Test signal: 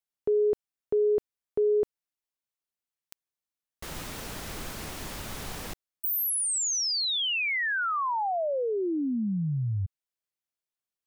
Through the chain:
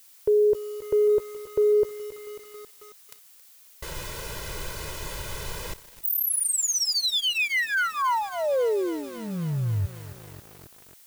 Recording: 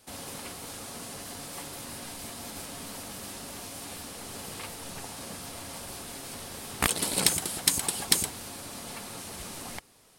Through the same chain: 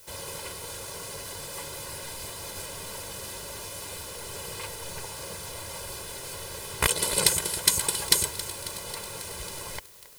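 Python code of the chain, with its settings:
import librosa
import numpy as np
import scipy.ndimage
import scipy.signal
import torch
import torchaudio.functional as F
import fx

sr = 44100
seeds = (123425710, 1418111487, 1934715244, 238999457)

y = x + 0.91 * np.pad(x, (int(2.0 * sr / 1000.0), 0))[:len(x)]
y = fx.dmg_noise_colour(y, sr, seeds[0], colour='blue', level_db=-53.0)
y = fx.echo_crushed(y, sr, ms=272, feedback_pct=80, bits=6, wet_db=-14.5)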